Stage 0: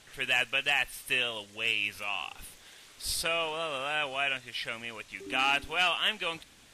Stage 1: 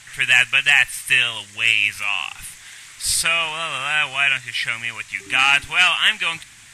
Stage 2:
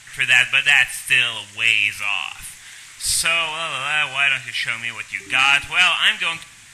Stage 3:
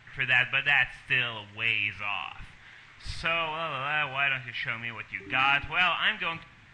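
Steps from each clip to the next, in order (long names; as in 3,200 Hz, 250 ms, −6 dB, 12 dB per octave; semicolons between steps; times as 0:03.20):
graphic EQ with 10 bands 125 Hz +9 dB, 250 Hz −4 dB, 500 Hz −9 dB, 1,000 Hz +3 dB, 2,000 Hz +11 dB, 8,000 Hz +12 dB; level +4.5 dB
dense smooth reverb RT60 0.65 s, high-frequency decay 0.9×, DRR 14 dB
head-to-tape spacing loss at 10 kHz 41 dB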